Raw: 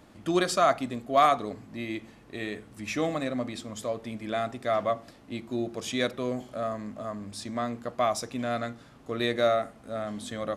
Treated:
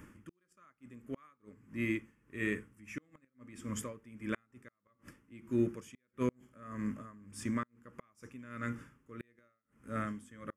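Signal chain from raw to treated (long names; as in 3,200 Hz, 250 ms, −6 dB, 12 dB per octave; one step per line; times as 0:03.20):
gate with flip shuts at −19 dBFS, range −38 dB
phaser with its sweep stopped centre 1,700 Hz, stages 4
tremolo with a sine in dB 1.6 Hz, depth 20 dB
level +4 dB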